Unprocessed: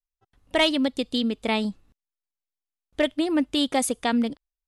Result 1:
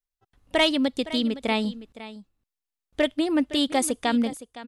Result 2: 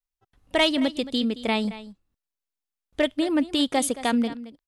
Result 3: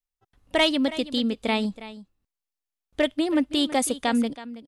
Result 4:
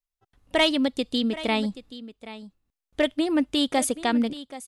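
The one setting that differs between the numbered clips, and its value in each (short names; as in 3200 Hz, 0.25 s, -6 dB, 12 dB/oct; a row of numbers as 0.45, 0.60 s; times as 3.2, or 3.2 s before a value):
echo, time: 0.513, 0.222, 0.325, 0.779 s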